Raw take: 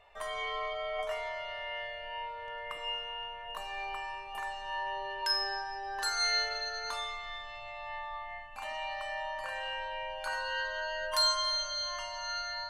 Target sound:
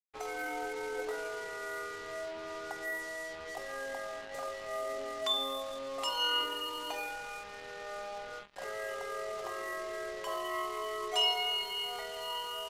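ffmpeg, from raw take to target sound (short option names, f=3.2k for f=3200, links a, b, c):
-filter_complex "[0:a]lowshelf=f=88:g=-11.5,asplit=2[a][b];[b]adelay=65,lowpass=f=3.5k:p=1,volume=-22dB,asplit=2[c][d];[d]adelay=65,lowpass=f=3.5k:p=1,volume=0.26[e];[c][e]amix=inputs=2:normalize=0[f];[a][f]amix=inputs=2:normalize=0,acrusher=bits=6:mix=0:aa=0.5,asetrate=30296,aresample=44100,atempo=1.45565,volume=-1dB"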